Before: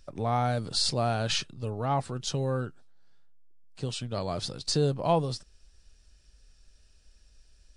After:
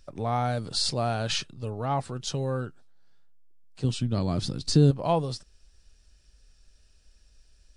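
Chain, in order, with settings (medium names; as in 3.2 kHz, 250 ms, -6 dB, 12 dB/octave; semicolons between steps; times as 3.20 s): 3.84–4.91 s: resonant low shelf 390 Hz +8 dB, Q 1.5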